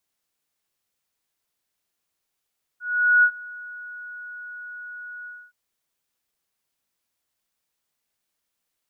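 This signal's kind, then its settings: ADSR sine 1.46 kHz, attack 433 ms, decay 72 ms, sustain -23 dB, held 2.46 s, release 260 ms -11.5 dBFS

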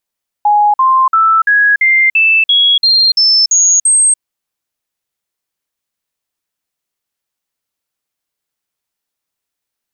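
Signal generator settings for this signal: stepped sine 832 Hz up, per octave 3, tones 11, 0.29 s, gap 0.05 s -6 dBFS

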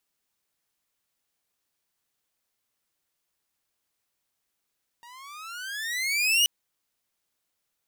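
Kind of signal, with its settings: gliding synth tone saw, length 1.43 s, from 931 Hz, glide +20 st, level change +29 dB, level -14.5 dB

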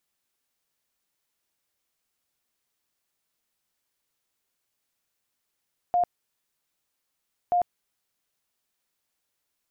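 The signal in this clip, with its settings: tone bursts 708 Hz, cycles 69, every 1.58 s, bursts 2, -19 dBFS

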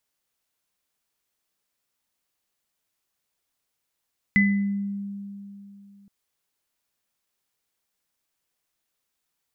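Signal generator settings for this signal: sine partials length 1.72 s, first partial 200 Hz, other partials 2.01 kHz, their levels 1.5 dB, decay 3.04 s, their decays 0.54 s, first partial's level -16.5 dB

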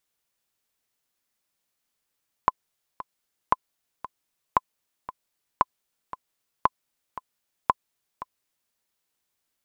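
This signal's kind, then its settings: metronome 115 bpm, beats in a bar 2, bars 6, 1.02 kHz, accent 16 dB -4.5 dBFS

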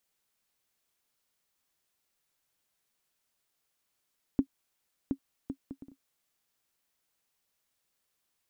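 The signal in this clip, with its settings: bouncing ball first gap 0.72 s, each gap 0.54, 272 Hz, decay 77 ms -14.5 dBFS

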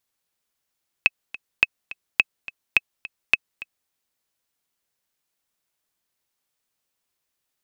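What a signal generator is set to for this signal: metronome 211 bpm, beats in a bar 2, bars 5, 2.58 kHz, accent 18.5 dB -1.5 dBFS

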